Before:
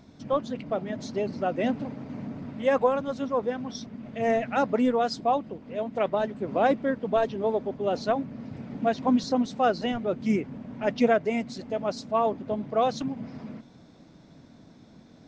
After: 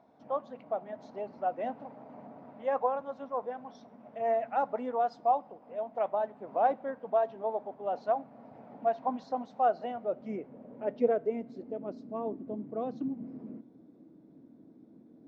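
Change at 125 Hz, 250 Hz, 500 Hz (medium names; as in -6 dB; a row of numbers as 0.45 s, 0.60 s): under -15 dB, -12.5 dB, -6.0 dB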